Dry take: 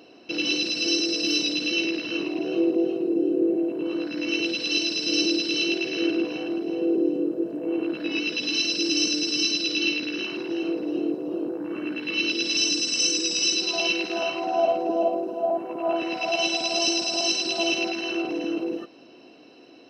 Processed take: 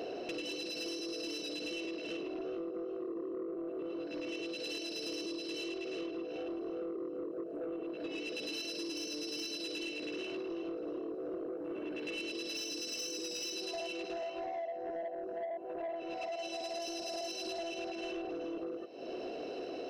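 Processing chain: high-order bell 520 Hz +10.5 dB 1.2 oct; compression 20:1, threshold -40 dBFS, peak gain reduction 33 dB; saturation -39 dBFS, distortion -16 dB; trim +5.5 dB

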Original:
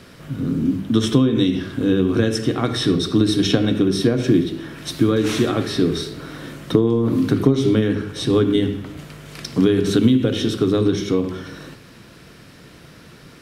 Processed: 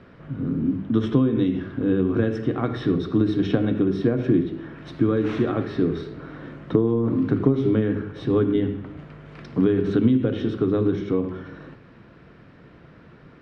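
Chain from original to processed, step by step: low-pass 1.8 kHz 12 dB/octave; trim -3.5 dB

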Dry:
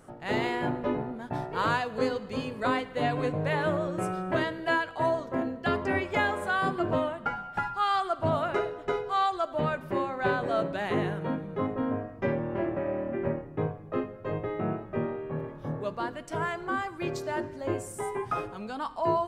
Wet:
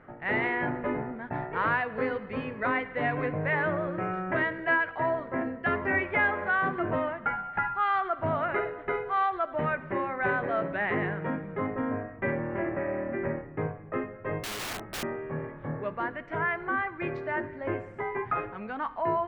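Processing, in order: in parallel at -0.5 dB: peak limiter -22.5 dBFS, peak gain reduction 8 dB; on the sum: four-pole ladder low-pass 2.3 kHz, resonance 55%; 14.43–15.03 s: integer overflow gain 34 dB; trim +3.5 dB

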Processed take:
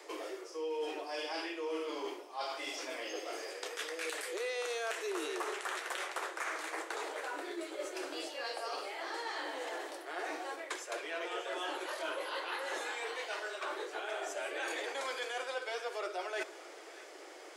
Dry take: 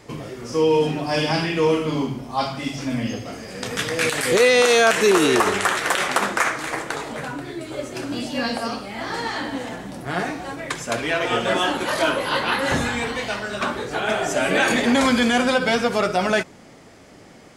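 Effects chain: steep high-pass 320 Hz 96 dB/octave; reverse; compression 5:1, threshold -35 dBFS, peak gain reduction 20 dB; reverse; two-band feedback delay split 1.2 kHz, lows 86 ms, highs 609 ms, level -15.5 dB; trim -3 dB

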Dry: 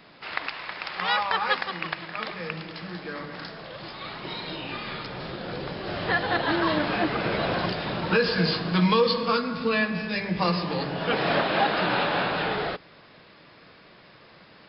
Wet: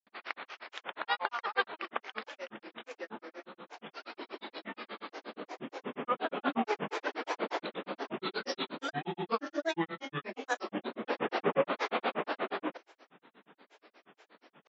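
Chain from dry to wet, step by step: brick-wall FIR high-pass 210 Hz; granulator 100 ms, grains 8.4 per s, pitch spread up and down by 7 st; low-pass 2.6 kHz 6 dB/octave; trim -3 dB

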